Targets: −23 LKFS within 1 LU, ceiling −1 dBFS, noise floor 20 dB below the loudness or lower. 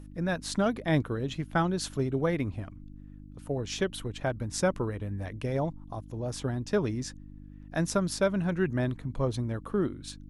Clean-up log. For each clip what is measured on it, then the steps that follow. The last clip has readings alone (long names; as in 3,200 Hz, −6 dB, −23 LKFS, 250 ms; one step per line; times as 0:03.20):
mains hum 50 Hz; hum harmonics up to 300 Hz; level of the hum −45 dBFS; integrated loudness −31.0 LKFS; sample peak −14.0 dBFS; target loudness −23.0 LKFS
→ hum removal 50 Hz, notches 6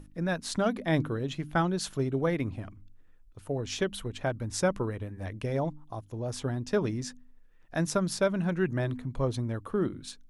mains hum none found; integrated loudness −31.0 LKFS; sample peak −14.5 dBFS; target loudness −23.0 LKFS
→ level +8 dB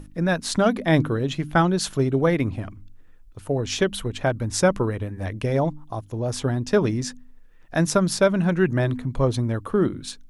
integrated loudness −23.0 LKFS; sample peak −6.5 dBFS; background noise floor −47 dBFS